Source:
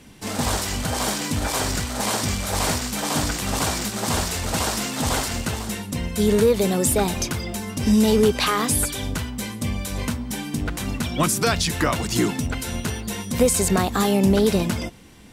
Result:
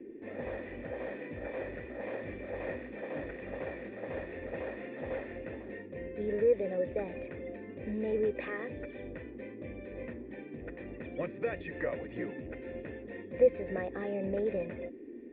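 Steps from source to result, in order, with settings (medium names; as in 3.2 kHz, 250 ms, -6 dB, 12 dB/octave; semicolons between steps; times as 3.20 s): cascade formant filter e; band noise 230–420 Hz -46 dBFS; trim -1.5 dB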